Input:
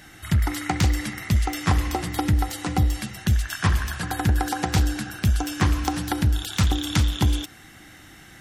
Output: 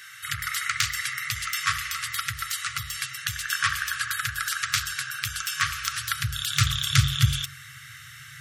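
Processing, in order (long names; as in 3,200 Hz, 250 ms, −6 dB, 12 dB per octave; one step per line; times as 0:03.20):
hum removal 45.51 Hz, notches 29
high-pass filter sweep 340 Hz → 150 Hz, 0:05.58–0:06.80
brick-wall band-stop 140–1,100 Hz
level +4.5 dB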